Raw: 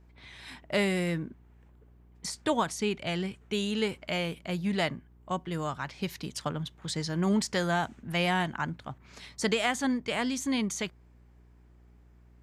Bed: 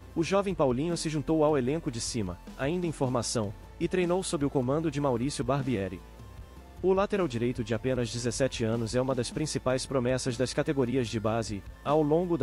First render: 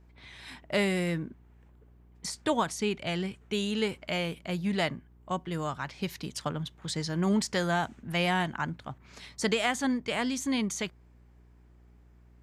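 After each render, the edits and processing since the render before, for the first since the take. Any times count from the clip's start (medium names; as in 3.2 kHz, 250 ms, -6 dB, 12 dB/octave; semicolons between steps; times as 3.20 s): no audible change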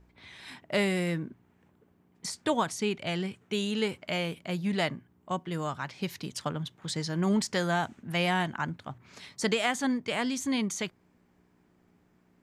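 de-hum 60 Hz, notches 2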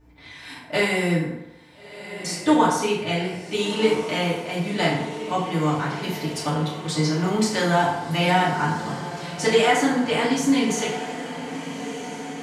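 echo that smears into a reverb 1375 ms, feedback 62%, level -12 dB; FDN reverb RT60 0.93 s, low-frequency decay 0.8×, high-frequency decay 0.6×, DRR -7.5 dB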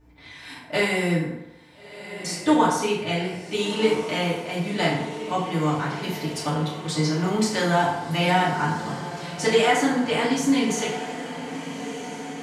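trim -1 dB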